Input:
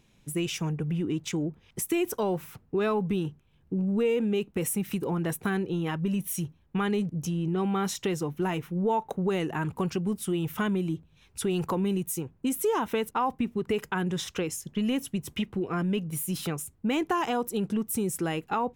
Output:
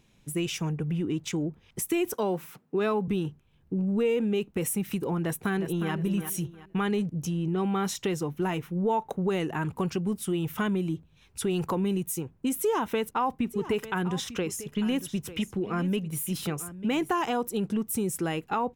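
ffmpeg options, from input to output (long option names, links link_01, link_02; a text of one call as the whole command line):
ffmpeg -i in.wav -filter_complex "[0:a]asettb=1/sr,asplit=3[link_01][link_02][link_03];[link_01]atrim=end=2.144[link_04];[link_02]atrim=start=2.14:end=3.08,asetpts=PTS-STARTPTS,afade=type=in:duration=0.004:curve=qsin,afade=type=out:start_time=0.936:duration=0.004:curve=qsin,highpass=frequency=160:width=0.5412,highpass=frequency=160:width=1.3066[link_05];[link_03]atrim=start=3.076[link_06];[link_04][link_05]acrossfade=duration=0.004:curve1=hsin:curve2=qsin[link_07];[link_07][link_06]acrossfade=duration=0.004:curve1=qsin:curve2=hsin,asplit=2[link_08][link_09];[link_09]afade=type=in:start_time=5.22:duration=0.01,afade=type=out:start_time=5.93:duration=0.01,aecho=0:1:360|720|1080|1440:0.375837|0.112751|0.0338254|0.0101476[link_10];[link_08][link_10]amix=inputs=2:normalize=0,asplit=3[link_11][link_12][link_13];[link_11]afade=type=out:start_time=13.49:duration=0.02[link_14];[link_12]aecho=1:1:897:0.188,afade=type=in:start_time=13.49:duration=0.02,afade=type=out:start_time=17.09:duration=0.02[link_15];[link_13]afade=type=in:start_time=17.09:duration=0.02[link_16];[link_14][link_15][link_16]amix=inputs=3:normalize=0" out.wav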